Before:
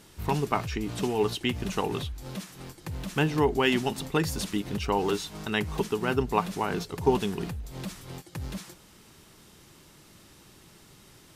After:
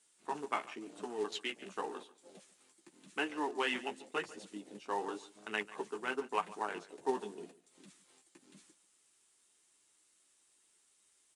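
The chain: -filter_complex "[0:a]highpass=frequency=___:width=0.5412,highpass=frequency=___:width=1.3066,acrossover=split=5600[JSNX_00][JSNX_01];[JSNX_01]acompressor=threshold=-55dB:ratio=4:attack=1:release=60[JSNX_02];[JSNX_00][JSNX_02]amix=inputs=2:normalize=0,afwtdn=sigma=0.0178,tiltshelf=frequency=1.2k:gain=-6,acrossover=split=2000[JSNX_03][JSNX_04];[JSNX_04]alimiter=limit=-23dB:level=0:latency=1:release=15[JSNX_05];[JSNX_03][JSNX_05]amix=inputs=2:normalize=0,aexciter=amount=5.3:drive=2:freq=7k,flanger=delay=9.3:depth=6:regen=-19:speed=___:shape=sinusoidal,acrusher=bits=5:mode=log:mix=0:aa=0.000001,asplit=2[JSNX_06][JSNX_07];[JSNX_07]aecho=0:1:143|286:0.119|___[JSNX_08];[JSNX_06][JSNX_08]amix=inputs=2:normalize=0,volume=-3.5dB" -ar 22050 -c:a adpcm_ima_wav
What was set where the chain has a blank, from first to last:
260, 260, 0.91, 0.0226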